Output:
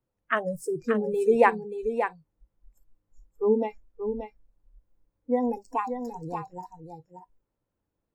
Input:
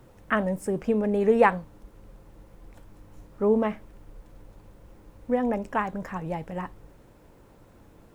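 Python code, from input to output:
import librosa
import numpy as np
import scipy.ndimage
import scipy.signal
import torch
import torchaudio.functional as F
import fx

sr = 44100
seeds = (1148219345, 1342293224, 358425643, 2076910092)

y = fx.noise_reduce_blind(x, sr, reduce_db=30)
y = y + 10.0 ** (-8.0 / 20.0) * np.pad(y, (int(580 * sr / 1000.0), 0))[:len(y)]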